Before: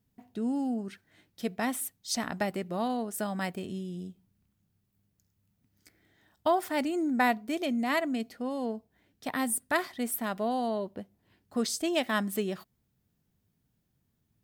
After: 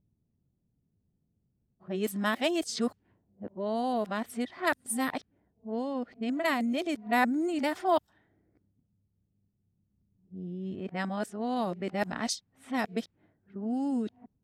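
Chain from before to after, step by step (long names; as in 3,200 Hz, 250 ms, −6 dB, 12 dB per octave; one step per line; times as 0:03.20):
played backwards from end to start
low-pass that shuts in the quiet parts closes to 510 Hz, open at −25.5 dBFS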